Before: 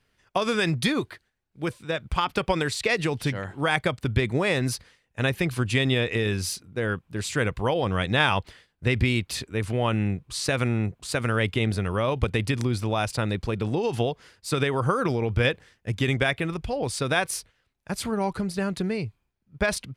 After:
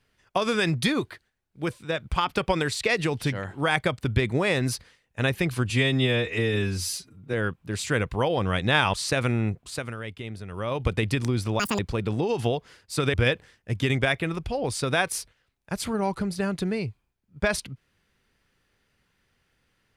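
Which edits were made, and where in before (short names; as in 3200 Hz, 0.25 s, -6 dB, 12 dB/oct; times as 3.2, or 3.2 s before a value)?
5.7–6.79 stretch 1.5×
8.39–10.3 cut
10.87–12.29 dip -12 dB, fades 0.46 s
12.96–13.33 speed 193%
14.68–15.32 cut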